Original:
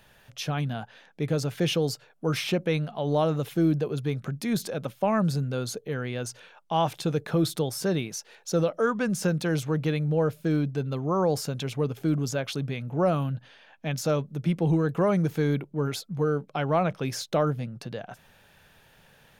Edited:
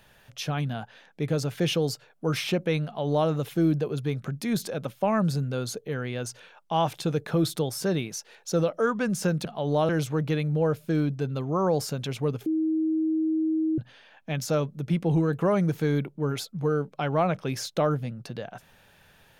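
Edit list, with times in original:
2.85–3.29 copy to 9.45
12.02–13.34 bleep 317 Hz -22 dBFS

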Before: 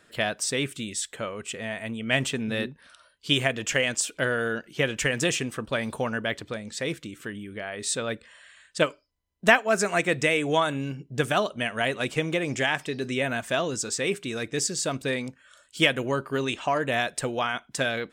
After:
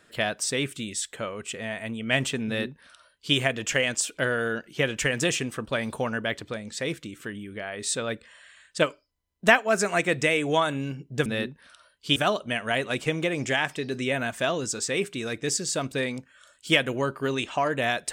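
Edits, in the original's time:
2.46–3.36 copy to 11.26

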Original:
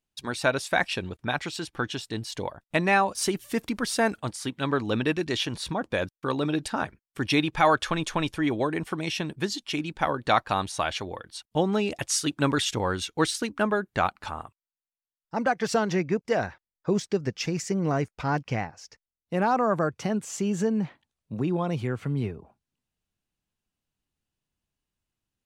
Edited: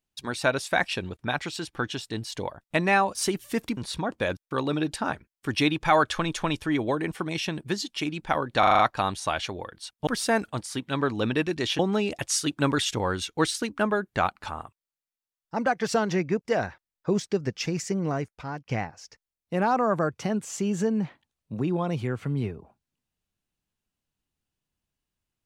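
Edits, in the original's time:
3.77–5.49 move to 11.59
10.31 stutter 0.04 s, 6 plays
17.66–18.49 fade out, to -13.5 dB

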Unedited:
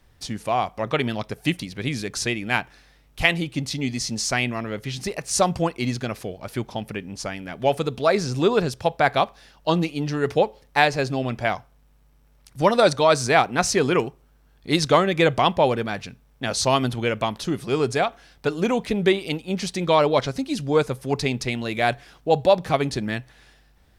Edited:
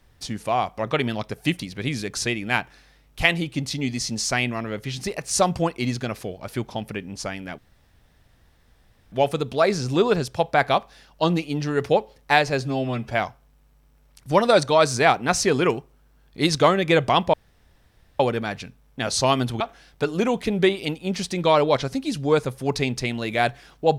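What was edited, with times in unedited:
7.58 insert room tone 1.54 s
11.07–11.4 stretch 1.5×
15.63 insert room tone 0.86 s
17.04–18.04 cut

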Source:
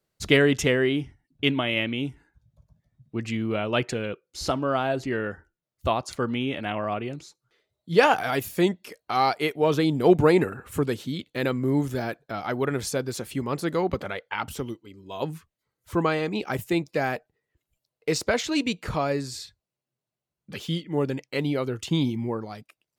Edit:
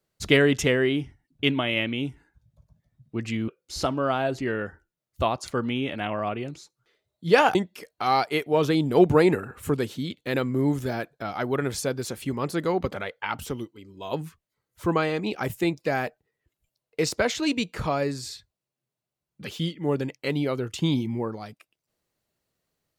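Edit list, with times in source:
3.48–4.13 cut
8.2–8.64 cut

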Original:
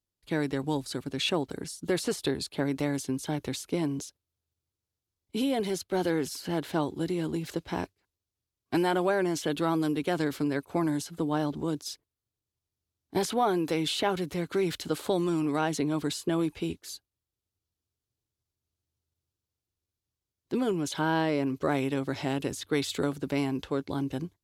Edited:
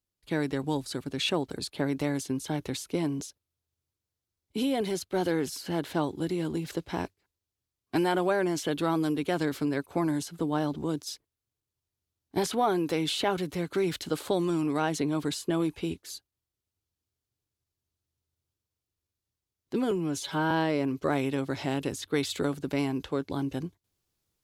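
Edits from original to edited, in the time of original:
1.59–2.38 cut
20.7–21.1 stretch 1.5×

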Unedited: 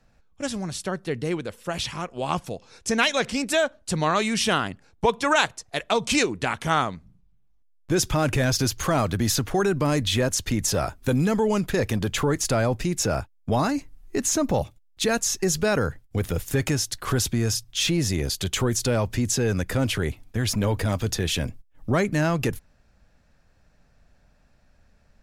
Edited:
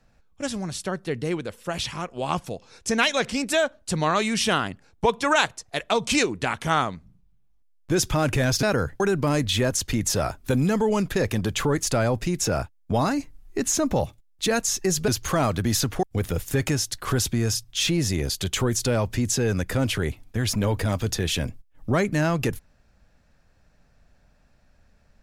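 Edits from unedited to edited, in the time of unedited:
8.63–9.58 swap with 15.66–16.03

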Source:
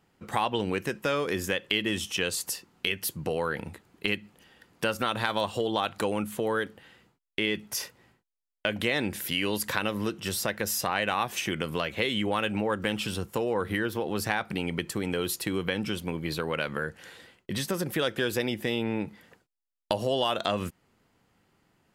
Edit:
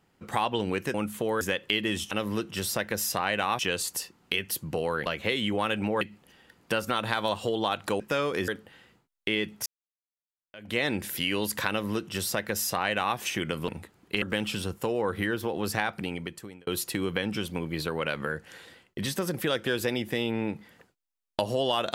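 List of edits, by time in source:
0.94–1.42 swap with 6.12–6.59
3.59–4.13 swap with 11.79–12.74
7.77–8.88 fade in exponential
9.8–11.28 copy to 2.12
14.41–15.19 fade out

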